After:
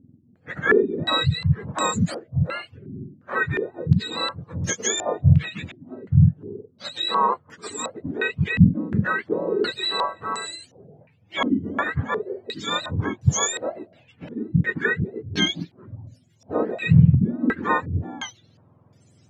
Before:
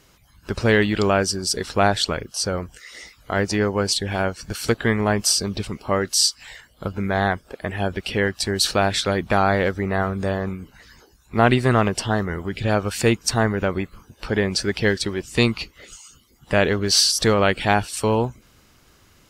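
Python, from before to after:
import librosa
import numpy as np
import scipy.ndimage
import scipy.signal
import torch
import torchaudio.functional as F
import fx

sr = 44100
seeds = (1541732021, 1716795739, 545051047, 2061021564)

y = fx.octave_mirror(x, sr, pivot_hz=870.0)
y = fx.filter_held_lowpass(y, sr, hz=2.8, low_hz=260.0, high_hz=6700.0)
y = y * 10.0 ** (-5.0 / 20.0)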